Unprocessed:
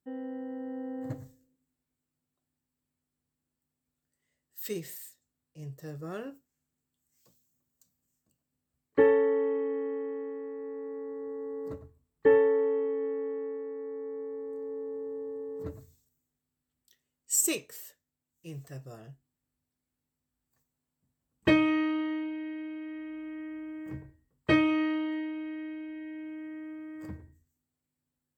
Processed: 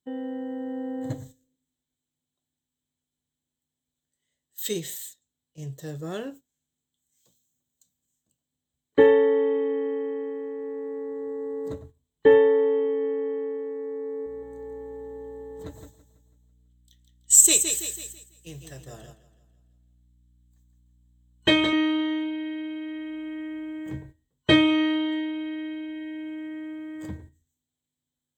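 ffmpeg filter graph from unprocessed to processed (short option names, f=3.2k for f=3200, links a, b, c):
-filter_complex "[0:a]asettb=1/sr,asplit=3[a][b][c];[a]atrim=end=14.264[d];[b]atrim=start=14.26:end=21.73,asetpts=PTS-STARTPTS,afade=t=in:d=0.004:c=qsin,afade=t=out:st=7.466:d=0.004:c=qsin,lowshelf=f=440:g=-7,aeval=exprs='val(0)+0.00112*(sin(2*PI*60*n/s)+sin(2*PI*2*60*n/s)/2+sin(2*PI*3*60*n/s)/3+sin(2*PI*4*60*n/s)/4+sin(2*PI*5*60*n/s)/5)':c=same,aecho=1:1:165|330|495|660|825|990:0.447|0.214|0.103|0.0494|0.0237|0.0114,atrim=end_sample=329427[e];[c]atrim=start=21.726[f];[d][e]acrossfade=d=0.004:c1=hsin:c2=qsin[g];[g][f]acrossfade=d=0.004:c1=qsin:c2=hsin,agate=range=-8dB:threshold=-51dB:ratio=16:detection=peak,superequalizer=10b=0.631:13b=3.16:15b=2.24,volume=5.5dB"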